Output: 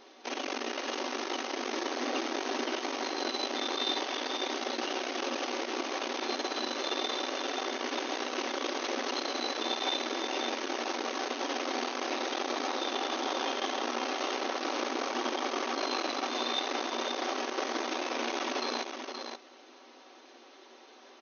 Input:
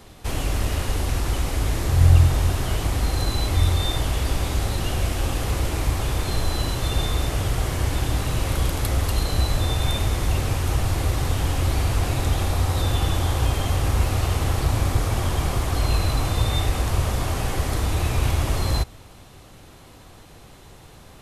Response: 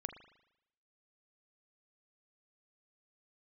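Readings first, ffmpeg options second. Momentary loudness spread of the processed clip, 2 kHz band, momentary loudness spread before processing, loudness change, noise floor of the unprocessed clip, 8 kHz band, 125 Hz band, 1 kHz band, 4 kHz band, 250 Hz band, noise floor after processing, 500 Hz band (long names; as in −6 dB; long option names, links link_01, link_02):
3 LU, −2.5 dB, 3 LU, −9.5 dB, −46 dBFS, −9.0 dB, below −40 dB, −2.5 dB, −2.5 dB, −5.5 dB, −55 dBFS, −2.5 dB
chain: -af "aecho=1:1:5.3:0.36,aeval=exprs='0.562*(cos(1*acos(clip(val(0)/0.562,-1,1)))-cos(1*PI/2))+0.0631*(cos(8*acos(clip(val(0)/0.562,-1,1)))-cos(8*PI/2))':channel_layout=same,aecho=1:1:524:0.473,afftfilt=real='re*between(b*sr/4096,230,6500)':imag='im*between(b*sr/4096,230,6500)':win_size=4096:overlap=0.75,volume=-5.5dB"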